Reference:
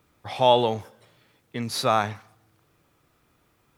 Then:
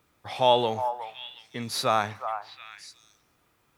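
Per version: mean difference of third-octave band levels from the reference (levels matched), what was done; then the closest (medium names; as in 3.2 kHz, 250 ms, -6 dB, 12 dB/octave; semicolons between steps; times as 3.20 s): 2.0 dB: bass shelf 480 Hz -4.5 dB; on a send: repeats whose band climbs or falls 364 ms, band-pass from 940 Hz, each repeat 1.4 oct, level -6 dB; on the sum: trim -1 dB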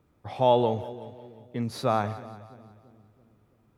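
5.0 dB: tilt shelf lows +6.5 dB, about 1.1 kHz; on a send: two-band feedback delay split 430 Hz, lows 333 ms, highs 180 ms, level -15.5 dB; on the sum: trim -5.5 dB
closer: first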